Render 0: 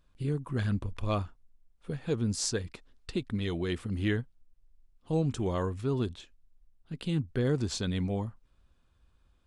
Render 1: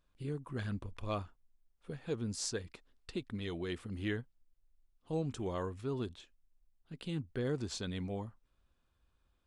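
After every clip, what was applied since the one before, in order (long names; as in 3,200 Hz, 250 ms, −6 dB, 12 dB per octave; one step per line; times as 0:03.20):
bass and treble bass −4 dB, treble −1 dB
level −5.5 dB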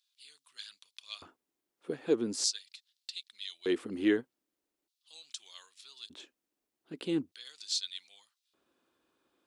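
auto-filter high-pass square 0.41 Hz 320–4,000 Hz
level +5 dB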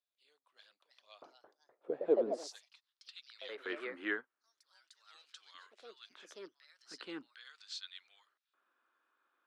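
delay with pitch and tempo change per echo 414 ms, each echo +3 semitones, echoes 2, each echo −6 dB
band-pass filter sweep 610 Hz → 1,400 Hz, 0:02.09–0:03.25
high-pass filter 120 Hz
level +5 dB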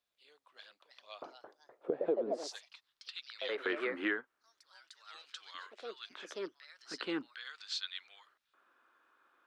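high-shelf EQ 6,100 Hz −10 dB
downward compressor 5 to 1, threshold −40 dBFS, peak gain reduction 15 dB
level +9.5 dB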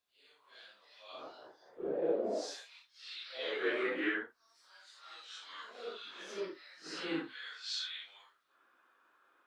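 random phases in long frames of 200 ms
level +1 dB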